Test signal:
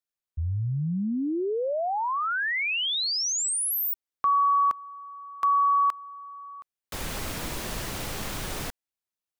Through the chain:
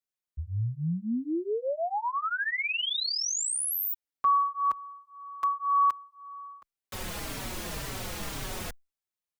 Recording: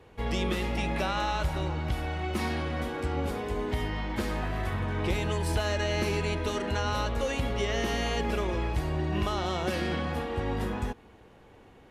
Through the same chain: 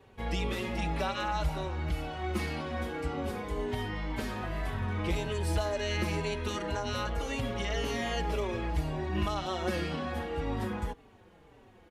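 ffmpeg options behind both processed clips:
-filter_complex "[0:a]asplit=2[s0][s1];[s1]adelay=4.7,afreqshift=-1.9[s2];[s0][s2]amix=inputs=2:normalize=1"

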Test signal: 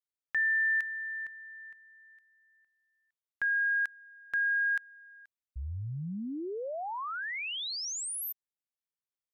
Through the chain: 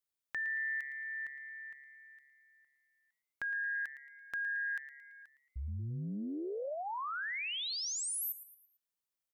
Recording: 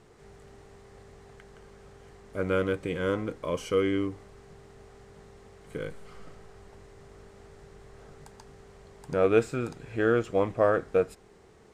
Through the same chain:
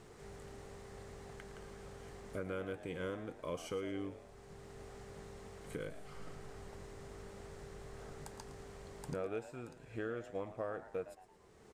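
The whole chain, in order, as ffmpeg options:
-filter_complex "[0:a]highshelf=f=7900:g=5.5,acompressor=threshold=0.0178:ratio=6:attack=2.8:release=723:knee=6:detection=rms,asplit=5[s0][s1][s2][s3][s4];[s1]adelay=112,afreqshift=140,volume=0.2[s5];[s2]adelay=224,afreqshift=280,volume=0.0822[s6];[s3]adelay=336,afreqshift=420,volume=0.0335[s7];[s4]adelay=448,afreqshift=560,volume=0.0138[s8];[s0][s5][s6][s7][s8]amix=inputs=5:normalize=0"

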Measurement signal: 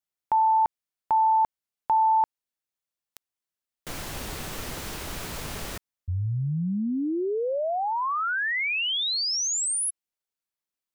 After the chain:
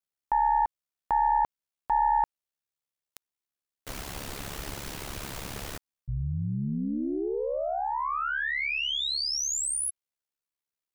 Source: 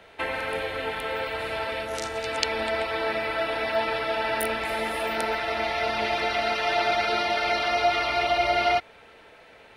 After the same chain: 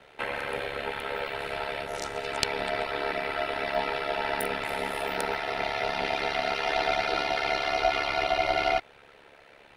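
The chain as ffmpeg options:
-af "aeval=exprs='0.668*(cos(1*acos(clip(val(0)/0.668,-1,1)))-cos(1*PI/2))+0.237*(cos(2*acos(clip(val(0)/0.668,-1,1)))-cos(2*PI/2))':c=same,aeval=exprs='val(0)*sin(2*PI*35*n/s)':c=same"

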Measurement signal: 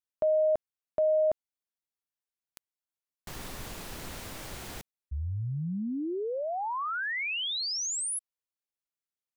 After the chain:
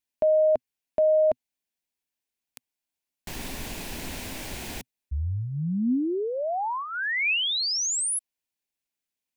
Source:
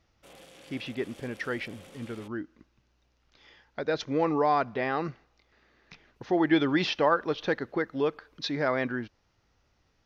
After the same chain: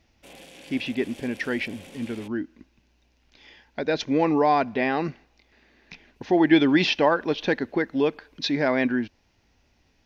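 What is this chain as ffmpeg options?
-af "equalizer=f=125:t=o:w=0.33:g=-6,equalizer=f=250:t=o:w=0.33:g=5,equalizer=f=500:t=o:w=0.33:g=-3,equalizer=f=1250:t=o:w=0.33:g=-10,equalizer=f=2500:t=o:w=0.33:g=4,volume=1.88"

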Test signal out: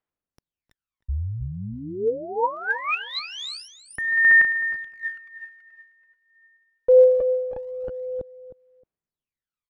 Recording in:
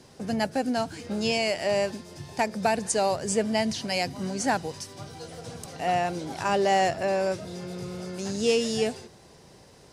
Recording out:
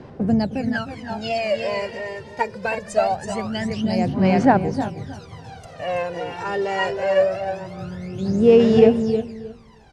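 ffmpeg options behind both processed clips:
-filter_complex "[0:a]bass=f=250:g=1,treble=f=4000:g=-11,asplit=2[s0][s1];[s1]aecho=0:1:329:0.531[s2];[s0][s2]amix=inputs=2:normalize=0,aphaser=in_gain=1:out_gain=1:delay=2.2:decay=0.8:speed=0.23:type=sinusoidal,highshelf=f=8900:g=-10.5,asplit=2[s3][s4];[s4]adelay=311,lowpass=f=2700:p=1,volume=0.224,asplit=2[s5][s6];[s6]adelay=311,lowpass=f=2700:p=1,volume=0.2[s7];[s5][s7]amix=inputs=2:normalize=0[s8];[s3][s8]amix=inputs=2:normalize=0,volume=0.891"

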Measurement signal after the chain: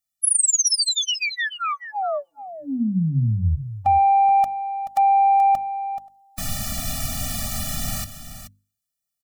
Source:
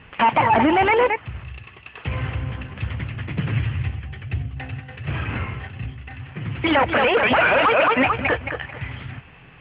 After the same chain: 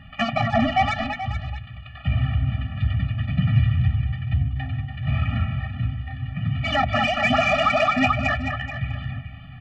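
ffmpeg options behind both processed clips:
-af "asoftclip=type=tanh:threshold=0.335,bass=f=250:g=5,treble=f=4000:g=9,bandreject=f=50:t=h:w=6,bandreject=f=100:t=h:w=6,bandreject=f=150:t=h:w=6,bandreject=f=200:t=h:w=6,bandreject=f=250:t=h:w=6,bandreject=f=300:t=h:w=6,aecho=1:1:430:0.266,afftfilt=real='re*eq(mod(floor(b*sr/1024/280),2),0)':imag='im*eq(mod(floor(b*sr/1024/280),2),0)':win_size=1024:overlap=0.75,volume=1.12"

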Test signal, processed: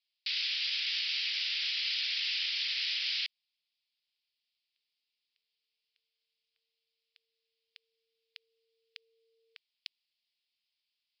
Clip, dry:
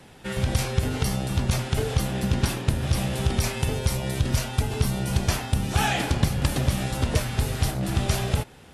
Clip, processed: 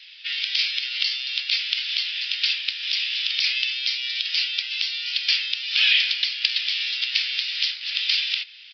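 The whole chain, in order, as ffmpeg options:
-af "asuperpass=centerf=3700:order=8:qfactor=0.74,aexciter=amount=3.1:drive=5.7:freq=2500,aresample=11025,aresample=44100,volume=1.78"

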